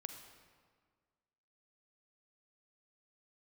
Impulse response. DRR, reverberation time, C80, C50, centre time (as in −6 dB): 6.0 dB, 1.7 s, 8.0 dB, 6.5 dB, 31 ms